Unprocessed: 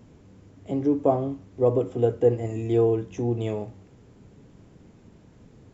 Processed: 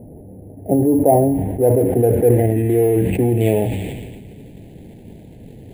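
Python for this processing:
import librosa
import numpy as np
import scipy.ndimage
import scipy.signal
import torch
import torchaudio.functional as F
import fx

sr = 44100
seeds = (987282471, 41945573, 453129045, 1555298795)

p1 = scipy.ndimage.median_filter(x, 25, mode='constant')
p2 = scipy.signal.sosfilt(scipy.signal.cheby1(2, 1.0, [770.0, 1900.0], 'bandstop', fs=sr, output='sos'), p1)
p3 = fx.over_compress(p2, sr, threshold_db=-27.0, ratio=-0.5)
p4 = p2 + (p3 * 10.0 ** (1.0 / 20.0))
p5 = fx.filter_sweep_lowpass(p4, sr, from_hz=700.0, to_hz=3800.0, start_s=0.41, end_s=4.29, q=1.6)
p6 = p5 + fx.echo_wet_highpass(p5, sr, ms=111, feedback_pct=82, hz=2400.0, wet_db=-13, dry=0)
p7 = np.repeat(scipy.signal.resample_poly(p6, 1, 4), 4)[:len(p6)]
p8 = fx.sustainer(p7, sr, db_per_s=33.0)
y = p8 * 10.0 ** (4.0 / 20.0)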